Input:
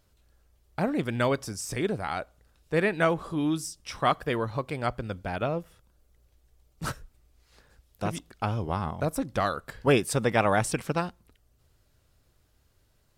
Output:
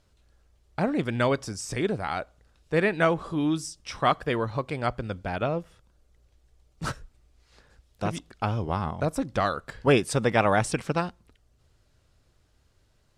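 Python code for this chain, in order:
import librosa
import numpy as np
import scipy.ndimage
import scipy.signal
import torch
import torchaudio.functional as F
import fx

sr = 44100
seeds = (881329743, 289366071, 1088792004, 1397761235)

y = scipy.signal.sosfilt(scipy.signal.butter(2, 8400.0, 'lowpass', fs=sr, output='sos'), x)
y = F.gain(torch.from_numpy(y), 1.5).numpy()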